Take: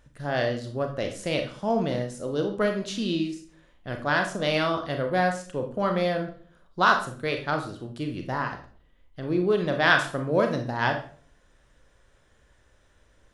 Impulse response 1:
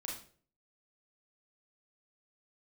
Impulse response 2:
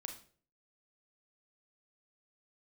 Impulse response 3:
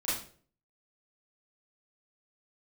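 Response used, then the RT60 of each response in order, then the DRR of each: 2; 0.45, 0.45, 0.45 seconds; −2.5, 4.0, −11.5 decibels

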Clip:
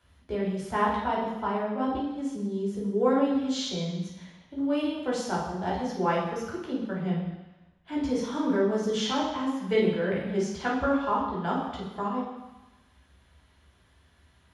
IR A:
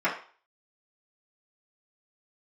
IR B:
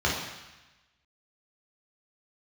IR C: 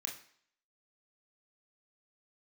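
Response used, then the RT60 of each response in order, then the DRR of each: B; 0.40, 1.0, 0.55 seconds; −10.0, −5.0, −0.5 decibels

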